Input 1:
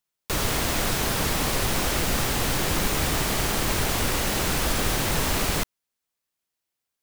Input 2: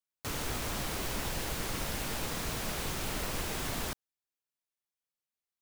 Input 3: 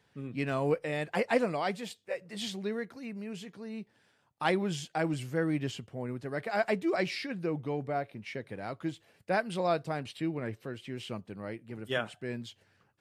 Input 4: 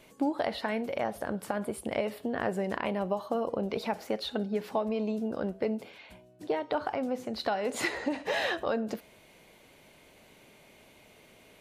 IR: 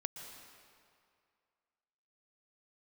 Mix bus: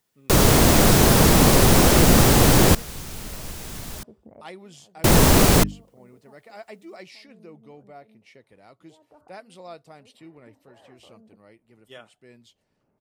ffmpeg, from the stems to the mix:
-filter_complex "[0:a]equalizer=f=370:w=0.33:g=9.5,bandreject=f=50:t=h:w=6,bandreject=f=100:t=h:w=6,bandreject=f=150:t=h:w=6,bandreject=f=200:t=h:w=6,bandreject=f=250:t=h:w=6,bandreject=f=300:t=h:w=6,volume=1.26,asplit=3[s0][s1][s2];[s0]atrim=end=2.75,asetpts=PTS-STARTPTS,afade=t=out:st=2.746:d=0.004:c=hsin[s3];[s1]atrim=start=2.75:end=5.04,asetpts=PTS-STARTPTS,volume=0[s4];[s2]atrim=start=5.04,asetpts=PTS-STARTPTS,afade=t=in:d=0.004:c=hsin[s5];[s3][s4][s5]concat=n=3:v=0:a=1[s6];[1:a]adelay=100,volume=0.596[s7];[2:a]bass=f=250:g=-12,treble=f=4000:g=0,bandreject=f=1600:w=9.1,volume=0.266,asplit=2[s8][s9];[3:a]lowpass=f=1300:w=0.5412,lowpass=f=1300:w=1.3066,alimiter=limit=0.0631:level=0:latency=1:release=216,adelay=2400,volume=0.2[s10];[s9]apad=whole_len=617531[s11];[s10][s11]sidechaincompress=threshold=0.00158:ratio=6:attack=16:release=754[s12];[s6][s7][s8][s12]amix=inputs=4:normalize=0,bass=f=250:g=7,treble=f=4000:g=6"

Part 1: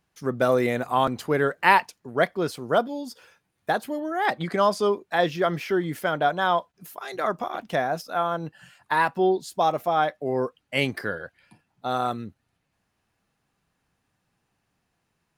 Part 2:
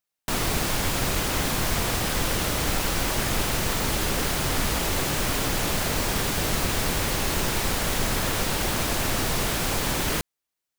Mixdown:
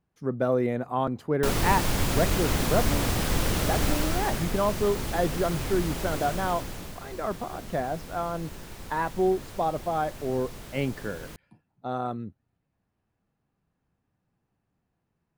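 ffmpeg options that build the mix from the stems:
-filter_complex "[0:a]highshelf=f=2100:g=-10.5,volume=0.501[s0];[1:a]adelay=1150,volume=0.631,afade=t=out:st=3.89:d=0.62:silence=0.473151,afade=t=out:st=6.24:d=0.74:silence=0.316228[s1];[s0][s1]amix=inputs=2:normalize=0,lowshelf=f=500:g=6.5"

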